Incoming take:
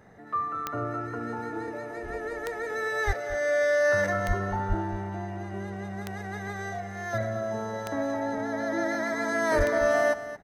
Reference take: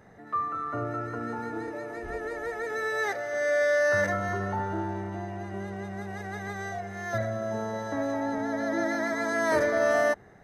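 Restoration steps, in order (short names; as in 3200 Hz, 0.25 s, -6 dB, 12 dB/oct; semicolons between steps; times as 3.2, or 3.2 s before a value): de-click; de-plosive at 3.06/4.27/4.68/9.57; inverse comb 0.225 s -13.5 dB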